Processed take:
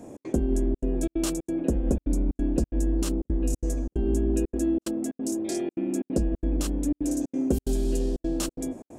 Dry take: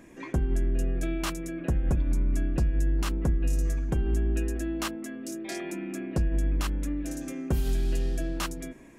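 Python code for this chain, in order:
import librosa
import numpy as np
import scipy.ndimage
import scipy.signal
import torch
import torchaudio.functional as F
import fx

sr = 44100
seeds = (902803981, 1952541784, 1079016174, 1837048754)

y = fx.graphic_eq(x, sr, hz=(125, 250, 500, 1000, 2000, 8000), db=(-9, 10, 8, -8, -8, 8))
y = fx.dmg_noise_band(y, sr, seeds[0], low_hz=84.0, high_hz=710.0, level_db=-47.0)
y = fx.step_gate(y, sr, bpm=182, pattern='xx.xxxxxx.xxx.x', floor_db=-60.0, edge_ms=4.5)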